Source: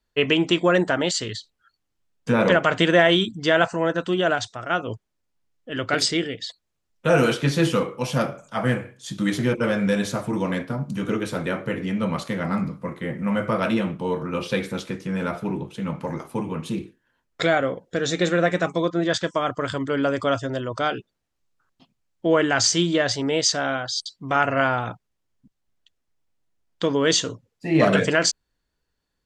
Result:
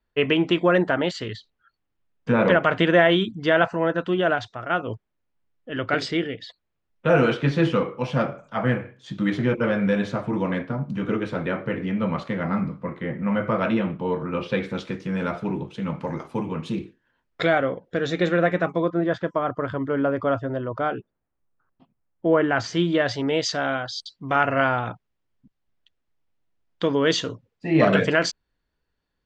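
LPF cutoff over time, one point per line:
14.52 s 2800 Hz
14.94 s 5000 Hz
16.78 s 5000 Hz
17.75 s 3000 Hz
18.33 s 3000 Hz
19.12 s 1500 Hz
22.3 s 1500 Hz
23.23 s 3800 Hz

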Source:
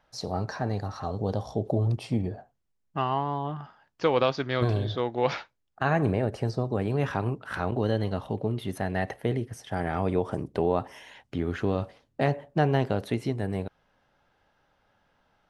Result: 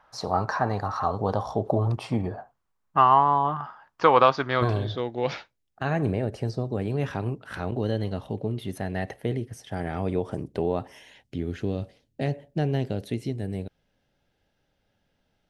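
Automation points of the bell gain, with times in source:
bell 1100 Hz 1.3 oct
4.13 s +13.5 dB
4.82 s +6 dB
5.04 s -5.5 dB
10.91 s -5.5 dB
11.36 s -14.5 dB

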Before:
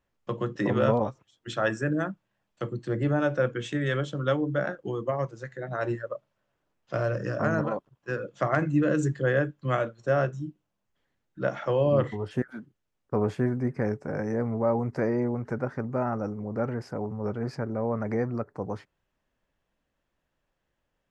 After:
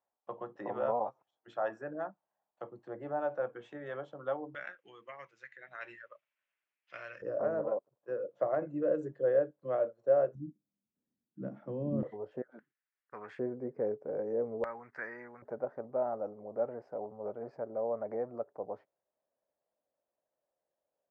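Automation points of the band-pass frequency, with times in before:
band-pass, Q 3.2
770 Hz
from 4.55 s 2300 Hz
from 7.22 s 550 Hz
from 10.35 s 230 Hz
from 12.03 s 560 Hz
from 12.59 s 1800 Hz
from 13.39 s 490 Hz
from 14.64 s 1700 Hz
from 15.42 s 610 Hz

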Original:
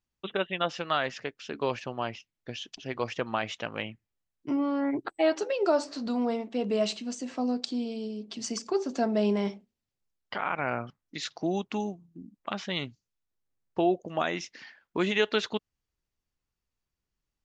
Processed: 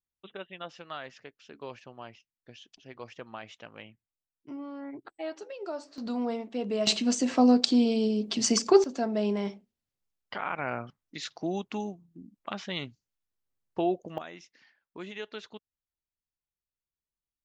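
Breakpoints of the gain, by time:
-12 dB
from 5.98 s -2.5 dB
from 6.87 s +9 dB
from 8.84 s -2.5 dB
from 14.18 s -14 dB

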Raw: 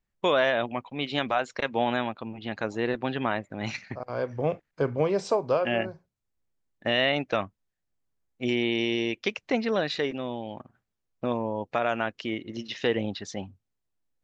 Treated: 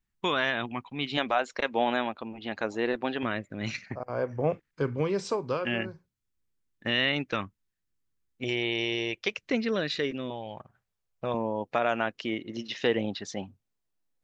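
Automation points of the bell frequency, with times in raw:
bell -12.5 dB 0.66 oct
580 Hz
from 1.17 s 130 Hz
from 3.23 s 830 Hz
from 3.86 s 3800 Hz
from 4.53 s 670 Hz
from 8.44 s 250 Hz
from 9.36 s 790 Hz
from 10.3 s 270 Hz
from 11.34 s 72 Hz

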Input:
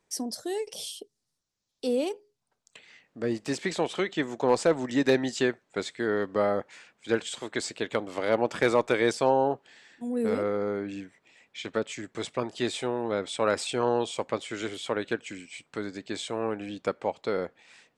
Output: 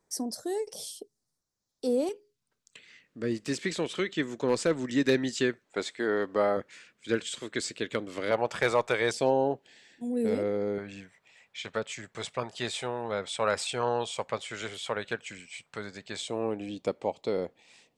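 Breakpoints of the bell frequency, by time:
bell -12 dB 0.81 oct
2800 Hz
from 2.09 s 770 Hz
from 5.65 s 130 Hz
from 6.57 s 810 Hz
from 8.31 s 280 Hz
from 9.11 s 1200 Hz
from 10.78 s 300 Hz
from 16.21 s 1500 Hz

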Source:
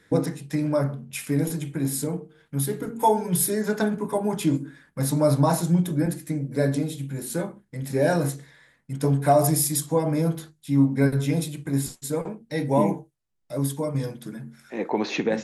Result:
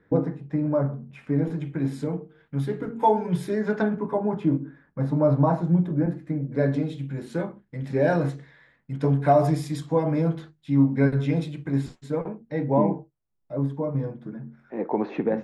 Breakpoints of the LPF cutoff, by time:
1.17 s 1200 Hz
1.84 s 2600 Hz
3.75 s 2600 Hz
4.41 s 1300 Hz
6.13 s 1300 Hz
6.83 s 2900 Hz
11.8 s 2900 Hz
12.93 s 1200 Hz

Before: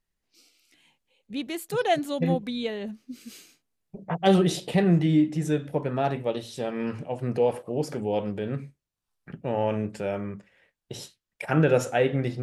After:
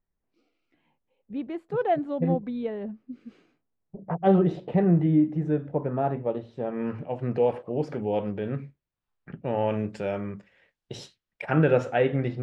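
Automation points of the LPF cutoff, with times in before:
6.65 s 1200 Hz
7.14 s 2700 Hz
9.33 s 2700 Hz
9.98 s 5800 Hz
10.94 s 5800 Hz
11.58 s 2800 Hz

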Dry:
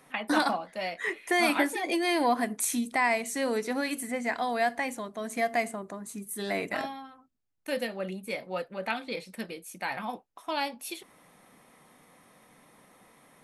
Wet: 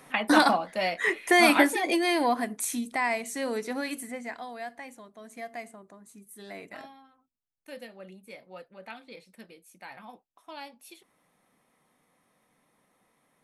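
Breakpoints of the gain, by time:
1.61 s +5.5 dB
2.52 s -2 dB
3.94 s -2 dB
4.56 s -11.5 dB

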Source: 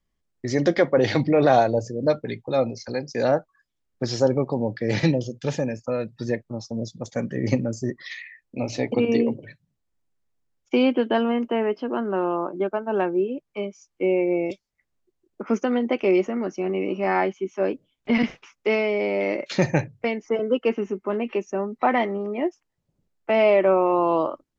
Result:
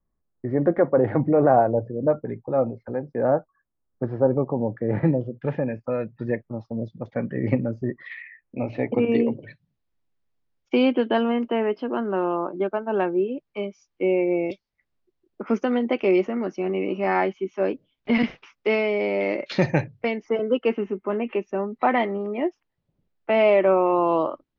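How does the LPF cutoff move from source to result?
LPF 24 dB/oct
4.9 s 1400 Hz
5.76 s 2400 Hz
9 s 2400 Hz
9.43 s 4900 Hz
20.52 s 4900 Hz
21.24 s 2900 Hz
21.58 s 4300 Hz

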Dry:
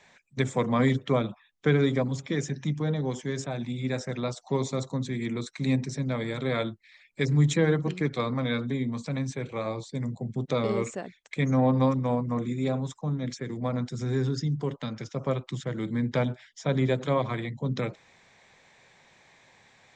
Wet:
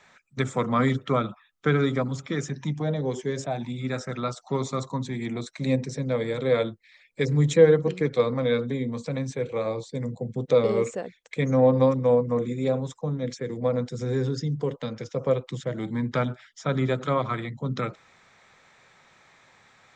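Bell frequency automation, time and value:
bell +12.5 dB 0.27 oct
2.46 s 1300 Hz
3.2 s 380 Hz
3.83 s 1300 Hz
4.62 s 1300 Hz
5.83 s 490 Hz
15.6 s 490 Hz
16.17 s 1300 Hz

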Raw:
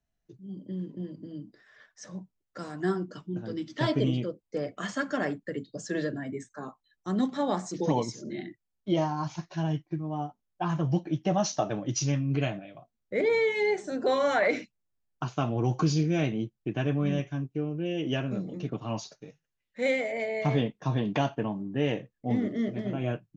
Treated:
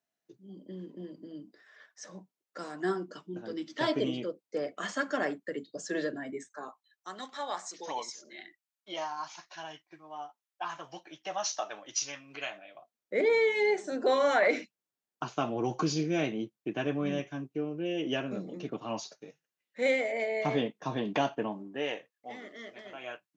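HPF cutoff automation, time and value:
6.34 s 310 Hz
7.17 s 960 Hz
12.48 s 960 Hz
13.2 s 260 Hz
21.46 s 260 Hz
22.13 s 920 Hz

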